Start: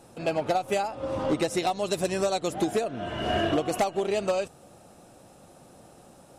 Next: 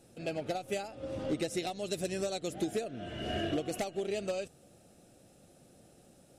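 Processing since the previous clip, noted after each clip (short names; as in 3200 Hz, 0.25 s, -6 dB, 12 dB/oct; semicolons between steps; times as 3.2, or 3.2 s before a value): bell 1000 Hz -14 dB 0.78 oct; gain -6 dB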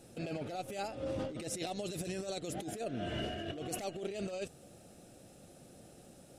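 negative-ratio compressor -39 dBFS, ratio -1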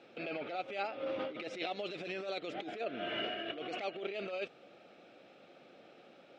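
speaker cabinet 350–3900 Hz, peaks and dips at 1300 Hz +6 dB, 2300 Hz +8 dB, 3300 Hz +3 dB; gain +1.5 dB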